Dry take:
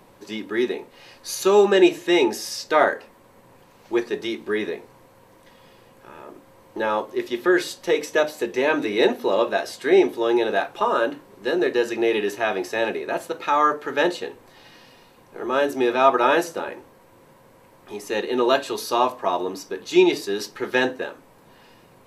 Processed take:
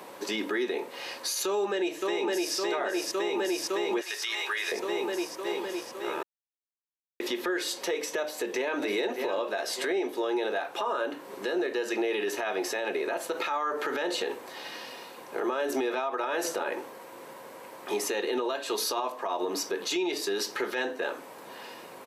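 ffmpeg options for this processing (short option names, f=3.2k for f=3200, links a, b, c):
-filter_complex "[0:a]asplit=2[a][b];[b]afade=t=in:st=1.46:d=0.01,afade=t=out:st=2.55:d=0.01,aecho=0:1:560|1120|1680|2240|2800|3360|3920|4480|5040|5600:0.562341|0.365522|0.237589|0.154433|0.100381|0.0652479|0.0424112|0.0275673|0.0179187|0.0116472[c];[a][c]amix=inputs=2:normalize=0,asettb=1/sr,asplit=3[d][e][f];[d]atrim=end=4.014[g];[e]atrim=start=4.01:end=4.72,asetpts=PTS-STARTPTS,afade=t=in:d=0.004:c=qsin,afade=t=out:st=0.706:d=0.004:c=qsin,highpass=1.4k[h];[f]atrim=start=4.716[i];[g][h]acrossfade=d=0.004:c1=hsin:c2=qsin[j];[j][i]acrossfade=d=0.004:c1=qsin:c2=hsin,asplit=2[k][l];[l]afade=t=in:st=8.22:d=0.01,afade=t=out:st=8.81:d=0.01,aecho=0:1:600|1200|1800:0.316228|0.0790569|0.0197642[m];[k][m]amix=inputs=2:normalize=0,asettb=1/sr,asplit=3[n][o][p];[n]atrim=end=13.214[q];[o]atrim=start=13.21:end=16.45,asetpts=PTS-STARTPTS,afade=t=in:d=0.004:c=qsin,afade=t=out:st=3.236:d=0.004:c=qsin,acompressor=threshold=-31dB:ratio=2.5:attack=3.2:release=140:knee=1:detection=peak[r];[p]atrim=start=16.446[s];[q][r]acrossfade=d=0.004:c1=hsin:c2=qsin[t];[t][s]acrossfade=d=0.004:c1=qsin:c2=hsin,asplit=3[u][v][w];[u]atrim=end=6.23,asetpts=PTS-STARTPTS,afade=t=out:st=6.226:d=0.004:c=hsin[x];[v]atrim=start=6.23:end=7.2,asetpts=PTS-STARTPTS,volume=0[y];[w]atrim=start=7.2,asetpts=PTS-STARTPTS,afade=t=in:d=0.004:c=hsin[z];[x][y][z]concat=n=3:v=0:a=1,highpass=340,acompressor=threshold=-31dB:ratio=6,alimiter=level_in=5.5dB:limit=-24dB:level=0:latency=1:release=61,volume=-5.5dB,volume=8.5dB"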